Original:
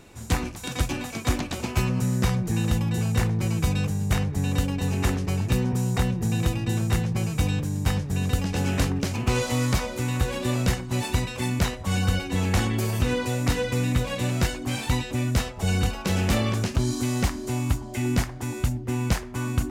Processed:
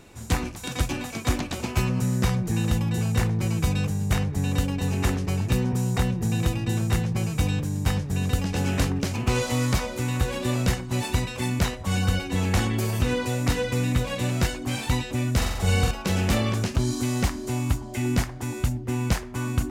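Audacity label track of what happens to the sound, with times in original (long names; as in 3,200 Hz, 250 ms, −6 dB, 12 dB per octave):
15.370000	15.910000	flutter between parallel walls apart 7.7 metres, dies away in 0.87 s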